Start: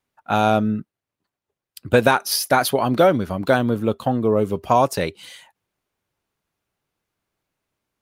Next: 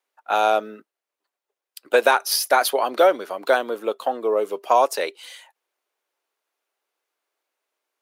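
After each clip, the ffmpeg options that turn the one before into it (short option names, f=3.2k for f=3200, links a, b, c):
-af "highpass=f=400:w=0.5412,highpass=f=400:w=1.3066"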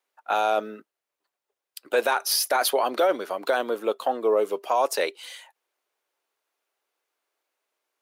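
-af "alimiter=limit=-13dB:level=0:latency=1:release=16"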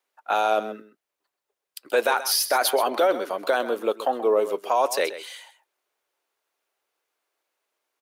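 -af "aecho=1:1:130:0.211,volume=1dB"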